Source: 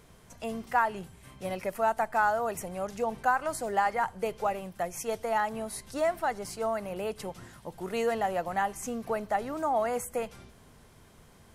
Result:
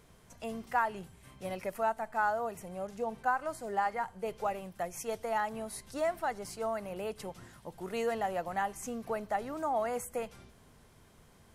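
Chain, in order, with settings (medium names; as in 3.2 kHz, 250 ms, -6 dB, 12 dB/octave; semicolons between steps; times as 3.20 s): 1.83–4.28 s: harmonic-percussive split percussive -8 dB; trim -4 dB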